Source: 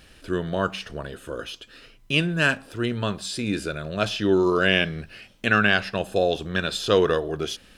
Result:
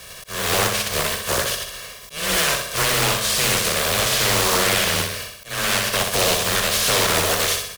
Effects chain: spectral contrast reduction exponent 0.24; band-stop 7.4 kHz, Q 22; comb 1.8 ms, depth 89%; in parallel at -1.5 dB: compression, threshold -25 dBFS, peak gain reduction 13.5 dB; on the sum: peak limiter -10 dBFS, peak gain reduction 10.5 dB; frequency shift +15 Hz; hard clipper -19.5 dBFS, distortion -11 dB; on a send: flutter echo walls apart 10.8 m, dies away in 0.71 s; on the sum: slow attack 286 ms; loudspeaker Doppler distortion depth 0.62 ms; trim +4.5 dB

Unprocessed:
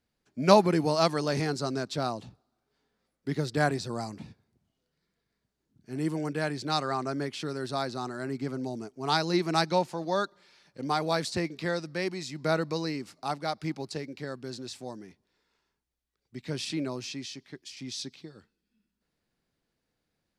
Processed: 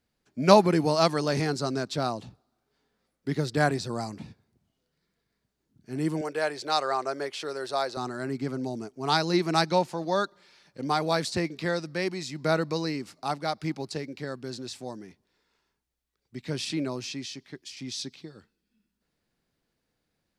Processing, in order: 6.21–7.97 s: resonant low shelf 320 Hz -13 dB, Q 1.5; trim +2 dB

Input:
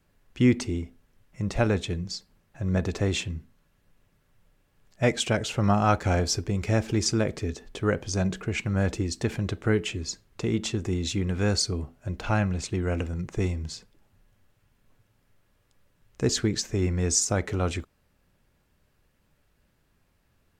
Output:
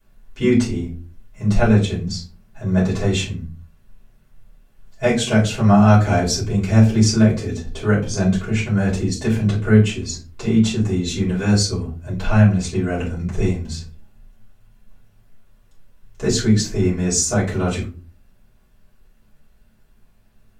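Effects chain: treble shelf 6.8 kHz +4 dB; simulated room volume 150 m³, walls furnished, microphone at 5.1 m; trim -5.5 dB

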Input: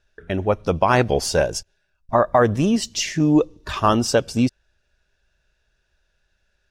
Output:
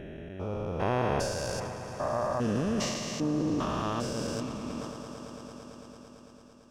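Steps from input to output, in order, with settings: spectrogram pixelated in time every 400 ms; echo with a slow build-up 112 ms, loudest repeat 5, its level -17.5 dB; decay stretcher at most 34 dB/s; trim -7.5 dB

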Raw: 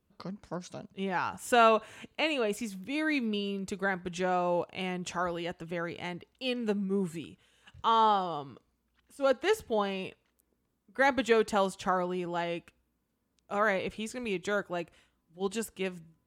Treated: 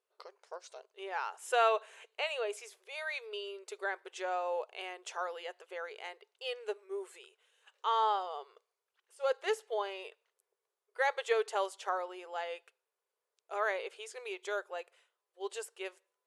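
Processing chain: brick-wall FIR band-pass 370–12000 Hz; trim -5 dB

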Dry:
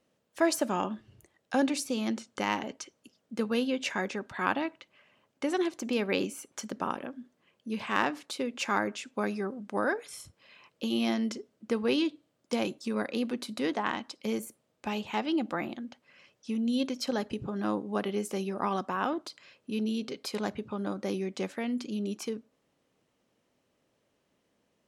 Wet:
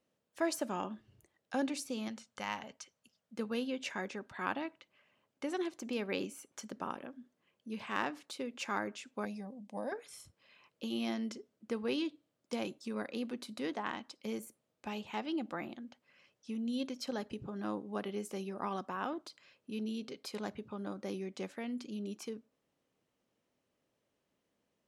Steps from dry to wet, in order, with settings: 2.08–3.37 s: peaking EQ 330 Hz -13 dB 0.85 oct; 9.25–9.92 s: static phaser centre 370 Hz, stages 6; trim -7.5 dB

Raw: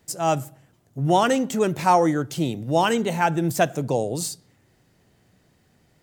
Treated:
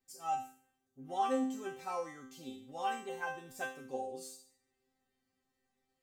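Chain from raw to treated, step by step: chord resonator C4 fifth, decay 0.5 s; dynamic bell 910 Hz, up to +5 dB, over -50 dBFS, Q 0.98

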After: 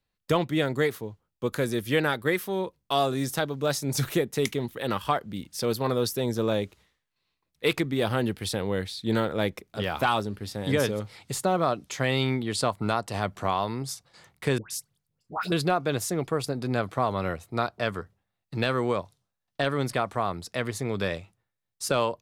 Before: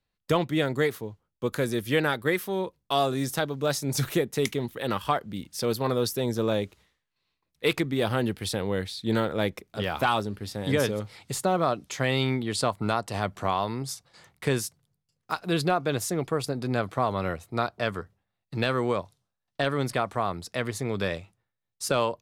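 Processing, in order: 14.58–15.52 s: phase dispersion highs, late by 124 ms, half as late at 1.2 kHz

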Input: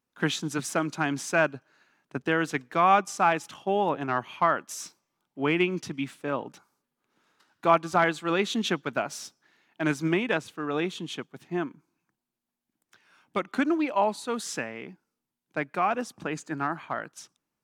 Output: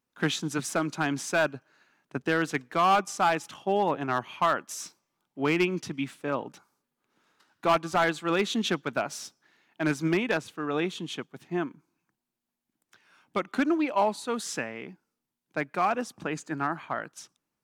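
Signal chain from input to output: hard clipper -16.5 dBFS, distortion -15 dB

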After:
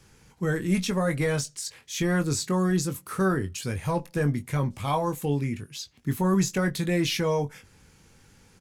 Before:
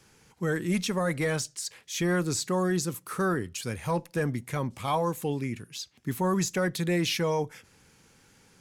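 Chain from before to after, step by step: bass shelf 110 Hz +11.5 dB; doubling 21 ms -8 dB

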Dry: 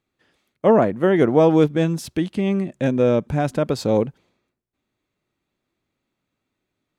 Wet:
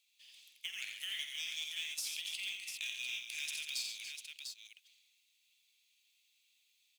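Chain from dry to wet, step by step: steep high-pass 2.5 kHz 48 dB/octave; compression 6:1, threshold -50 dBFS, peak gain reduction 19 dB; short-mantissa float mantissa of 2-bit; on a send: multi-tap echo 47/87/137/287/698 ms -10.5/-6/-11/-11.5/-6 dB; on the sum: trim +10.5 dB

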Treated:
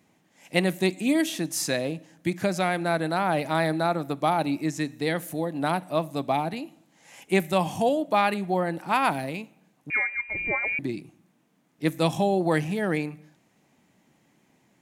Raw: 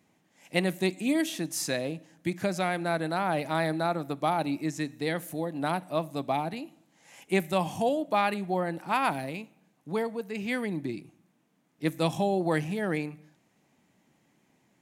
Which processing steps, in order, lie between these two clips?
9.90–10.79 s: frequency inversion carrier 2.6 kHz; trim +3.5 dB

